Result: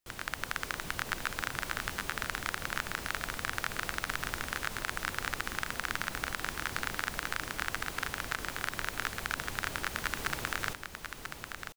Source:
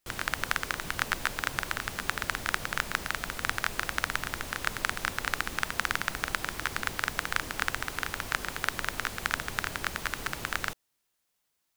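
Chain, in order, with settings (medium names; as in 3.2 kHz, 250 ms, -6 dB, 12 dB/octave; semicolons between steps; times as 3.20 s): level rider; peak limiter -6 dBFS, peak gain reduction 5 dB; on a send: delay 990 ms -7.5 dB; on the sum: trim -6.5 dB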